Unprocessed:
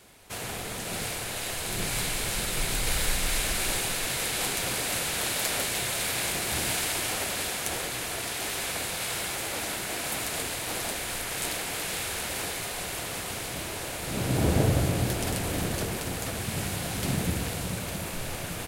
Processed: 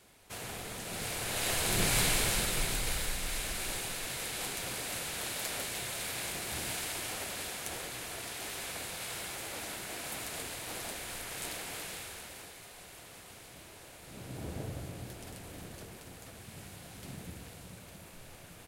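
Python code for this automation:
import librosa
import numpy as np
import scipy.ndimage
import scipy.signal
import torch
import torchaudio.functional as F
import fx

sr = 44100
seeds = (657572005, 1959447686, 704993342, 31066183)

y = fx.gain(x, sr, db=fx.line((0.94, -6.5), (1.51, 1.5), (2.14, 1.5), (3.12, -8.5), (11.77, -8.5), (12.51, -17.0)))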